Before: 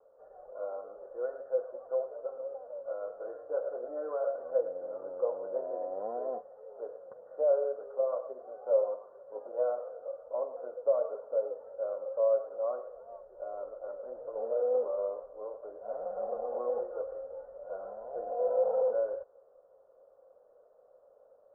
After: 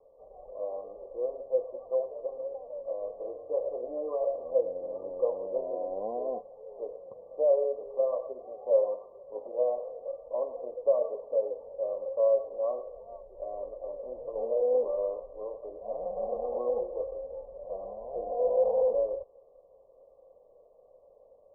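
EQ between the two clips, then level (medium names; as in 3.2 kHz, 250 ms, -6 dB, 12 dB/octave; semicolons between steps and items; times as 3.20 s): brick-wall FIR low-pass 1.2 kHz; tilt EQ -3 dB/octave; 0.0 dB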